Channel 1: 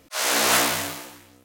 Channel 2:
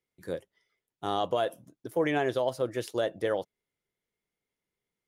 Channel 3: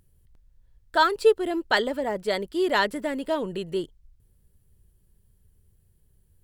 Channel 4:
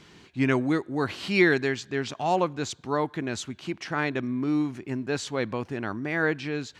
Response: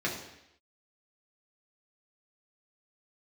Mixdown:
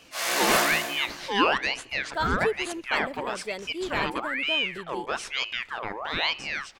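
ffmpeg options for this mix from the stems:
-filter_complex "[0:a]volume=-9dB,asplit=2[link_01][link_02];[link_02]volume=-4.5dB[link_03];[1:a]acompressor=threshold=-34dB:ratio=6,volume=-15.5dB[link_04];[2:a]adelay=1200,volume=-8.5dB[link_05];[3:a]aeval=exprs='val(0)*sin(2*PI*1700*n/s+1700*0.65/1.1*sin(2*PI*1.1*n/s))':channel_layout=same,volume=0.5dB,asplit=2[link_06][link_07];[link_07]volume=-23.5dB[link_08];[4:a]atrim=start_sample=2205[link_09];[link_03][link_08]amix=inputs=2:normalize=0[link_10];[link_10][link_09]afir=irnorm=-1:irlink=0[link_11];[link_01][link_04][link_05][link_06][link_11]amix=inputs=5:normalize=0"

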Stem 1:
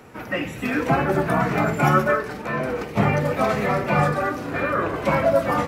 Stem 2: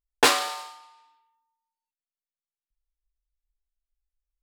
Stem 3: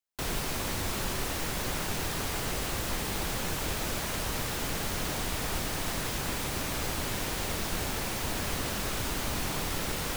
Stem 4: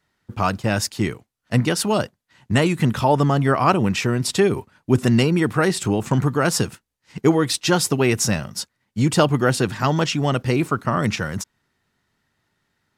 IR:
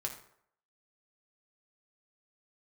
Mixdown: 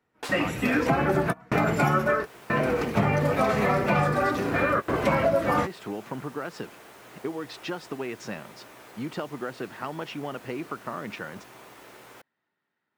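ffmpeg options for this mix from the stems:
-filter_complex "[0:a]volume=1.5dB[link_01];[1:a]volume=-18.5dB[link_02];[2:a]highpass=190,aeval=exprs='val(0)+0.00355*(sin(2*PI*60*n/s)+sin(2*PI*2*60*n/s)/2+sin(2*PI*3*60*n/s)/3+sin(2*PI*4*60*n/s)/4+sin(2*PI*5*60*n/s)/5)':channel_layout=same,adelay=2050,volume=-15.5dB,asplit=2[link_03][link_04];[link_04]volume=-3.5dB[link_05];[3:a]volume=-8dB,asplit=2[link_06][link_07];[link_07]apad=whole_len=250152[link_08];[link_01][link_08]sidechaingate=range=-32dB:threshold=-56dB:ratio=16:detection=peak[link_09];[link_03][link_06]amix=inputs=2:normalize=0,highpass=250,lowpass=2700,acompressor=threshold=-29dB:ratio=6,volume=0dB[link_10];[4:a]atrim=start_sample=2205[link_11];[link_05][link_11]afir=irnorm=-1:irlink=0[link_12];[link_09][link_02][link_10][link_12]amix=inputs=4:normalize=0,acompressor=threshold=-19dB:ratio=6"

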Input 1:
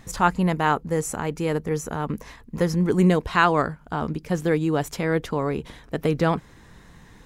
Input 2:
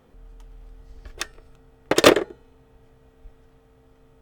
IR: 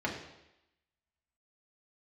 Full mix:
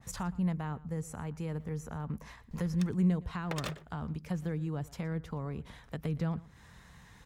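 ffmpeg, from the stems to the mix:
-filter_complex "[0:a]highpass=45,acrossover=split=320[link_01][link_02];[link_02]acompressor=threshold=-35dB:ratio=6[link_03];[link_01][link_03]amix=inputs=2:normalize=0,adynamicequalizer=threshold=0.00355:dfrequency=1700:dqfactor=0.7:tfrequency=1700:tqfactor=0.7:attack=5:release=100:ratio=0.375:range=3:mode=cutabove:tftype=highshelf,volume=-4dB,asplit=2[link_04][link_05];[link_05]volume=-20.5dB[link_06];[1:a]acompressor=threshold=-28dB:ratio=2,aeval=exprs='val(0)*pow(10,-32*if(lt(mod(1.1*n/s,1),2*abs(1.1)/1000),1-mod(1.1*n/s,1)/(2*abs(1.1)/1000),(mod(1.1*n/s,1)-2*abs(1.1)/1000)/(1-2*abs(1.1)/1000))/20)':channel_layout=same,adelay=1600,volume=-5dB,asplit=2[link_07][link_08];[link_08]volume=-23dB[link_09];[link_06][link_09]amix=inputs=2:normalize=0,aecho=0:1:117:1[link_10];[link_04][link_07][link_10]amix=inputs=3:normalize=0,equalizer=frequency=330:width=1.1:gain=-10.5"

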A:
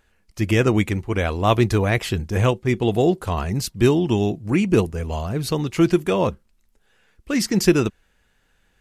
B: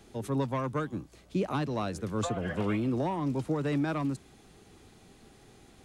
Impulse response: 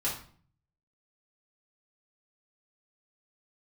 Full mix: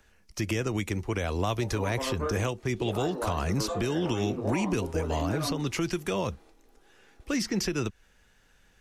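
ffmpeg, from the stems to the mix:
-filter_complex "[0:a]equalizer=frequency=5700:width=3.7:gain=6.5,acrossover=split=98|220|1100|3700[link_01][link_02][link_03][link_04][link_05];[link_01]acompressor=threshold=-33dB:ratio=4[link_06];[link_02]acompressor=threshold=-36dB:ratio=4[link_07];[link_03]acompressor=threshold=-27dB:ratio=4[link_08];[link_04]acompressor=threshold=-34dB:ratio=4[link_09];[link_05]acompressor=threshold=-37dB:ratio=4[link_10];[link_06][link_07][link_08][link_09][link_10]amix=inputs=5:normalize=0,volume=1dB,asplit=2[link_11][link_12];[1:a]highpass=frequency=320:width=0.5412,highpass=frequency=320:width=1.3066,highshelf=frequency=2300:gain=-12,flanger=delay=18:depth=6.7:speed=0.5,adelay=1450,volume=3dB,asplit=2[link_13][link_14];[link_14]volume=-10.5dB[link_15];[link_12]apad=whole_len=321502[link_16];[link_13][link_16]sidechaingate=range=-33dB:threshold=-50dB:ratio=16:detection=peak[link_17];[2:a]atrim=start_sample=2205[link_18];[link_15][link_18]afir=irnorm=-1:irlink=0[link_19];[link_11][link_17][link_19]amix=inputs=3:normalize=0,alimiter=limit=-18.5dB:level=0:latency=1:release=180"

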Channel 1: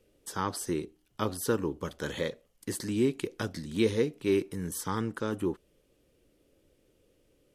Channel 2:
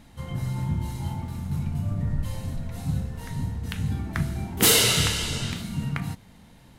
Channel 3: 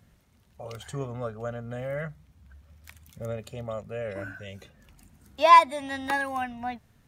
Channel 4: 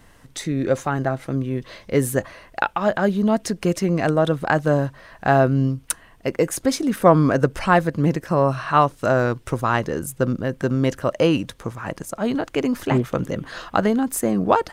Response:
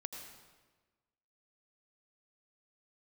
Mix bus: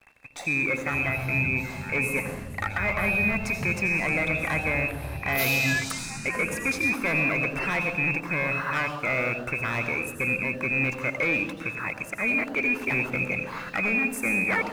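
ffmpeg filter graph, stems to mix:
-filter_complex "[0:a]adelay=1450,volume=-11dB[link_01];[1:a]alimiter=limit=-21dB:level=0:latency=1:release=76,crystalizer=i=1:c=0,asplit=2[link_02][link_03];[link_03]afreqshift=0.49[link_04];[link_02][link_04]amix=inputs=2:normalize=1,adelay=750,volume=-3dB[link_05];[2:a]adelay=200,volume=-8dB[link_06];[3:a]asoftclip=type=hard:threshold=-18dB,acrusher=bits=6:mix=0:aa=0.5,volume=-1dB,asplit=2[link_07][link_08];[link_08]volume=-5dB[link_09];[link_01][link_06][link_07]amix=inputs=3:normalize=0,lowpass=frequency=2300:width_type=q:width=0.5098,lowpass=frequency=2300:width_type=q:width=0.6013,lowpass=frequency=2300:width_type=q:width=0.9,lowpass=frequency=2300:width_type=q:width=2.563,afreqshift=-2700,alimiter=limit=-19dB:level=0:latency=1,volume=0dB[link_10];[4:a]atrim=start_sample=2205[link_11];[link_09][link_11]afir=irnorm=-1:irlink=0[link_12];[link_05][link_10][link_12]amix=inputs=3:normalize=0"

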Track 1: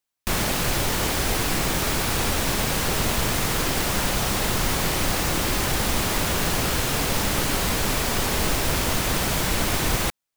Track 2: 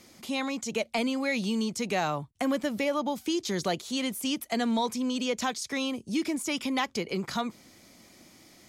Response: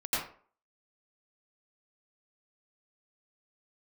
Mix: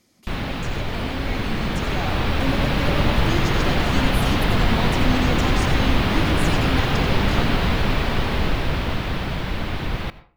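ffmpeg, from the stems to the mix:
-filter_complex "[0:a]lowpass=frequency=3800:width=0.5412,lowpass=frequency=3800:width=1.3066,acrusher=bits=6:mix=0:aa=0.5,volume=-5dB,asplit=2[link_01][link_02];[link_02]volume=-23dB[link_03];[1:a]volume=-11dB,asplit=2[link_04][link_05];[link_05]volume=-10dB[link_06];[2:a]atrim=start_sample=2205[link_07];[link_03][link_06]amix=inputs=2:normalize=0[link_08];[link_08][link_07]afir=irnorm=-1:irlink=0[link_09];[link_01][link_04][link_09]amix=inputs=3:normalize=0,bass=frequency=250:gain=5,treble=frequency=4000:gain=1,dynaudnorm=framelen=200:gausssize=21:maxgain=7.5dB"

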